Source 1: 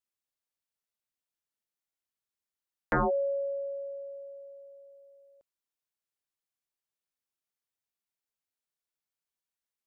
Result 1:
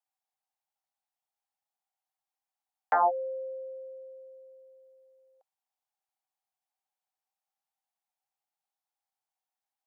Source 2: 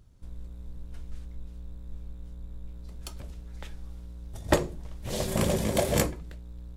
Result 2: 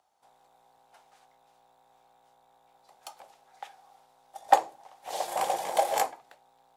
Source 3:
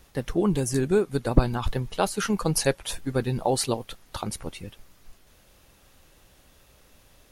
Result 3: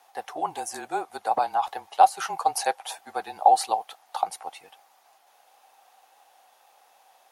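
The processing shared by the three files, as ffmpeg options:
-af "highpass=f=810:t=q:w=10,afreqshift=-31,volume=0.631"

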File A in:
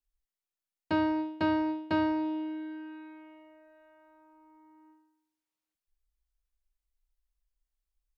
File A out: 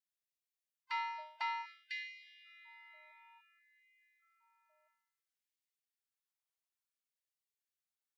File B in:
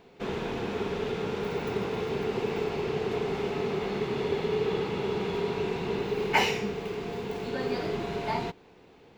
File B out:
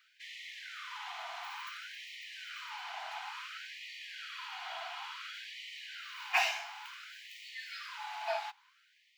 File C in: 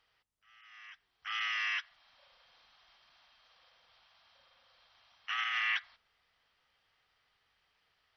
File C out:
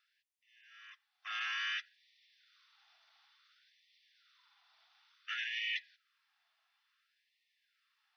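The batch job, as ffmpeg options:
-af "afftfilt=real='real(if(between(b,1,1008),(2*floor((b-1)/24)+1)*24-b,b),0)':imag='imag(if(between(b,1,1008),(2*floor((b-1)/24)+1)*24-b,b),0)*if(between(b,1,1008),-1,1)':win_size=2048:overlap=0.75,afftfilt=real='re*gte(b*sr/1024,630*pow(1800/630,0.5+0.5*sin(2*PI*0.57*pts/sr)))':imag='im*gte(b*sr/1024,630*pow(1800/630,0.5+0.5*sin(2*PI*0.57*pts/sr)))':win_size=1024:overlap=0.75,volume=0.708"

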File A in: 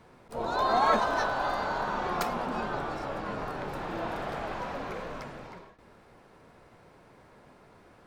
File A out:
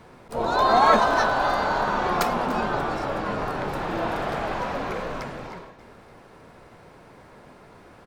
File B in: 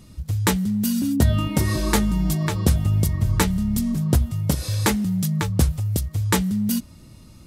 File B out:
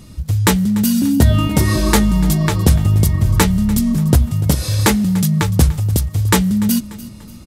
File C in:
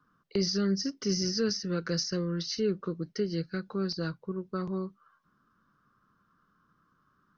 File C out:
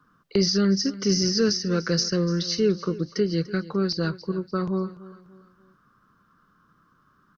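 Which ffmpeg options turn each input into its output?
-af "acontrast=43,aecho=1:1:293|586|879:0.133|0.0533|0.0213,volume=1.19"

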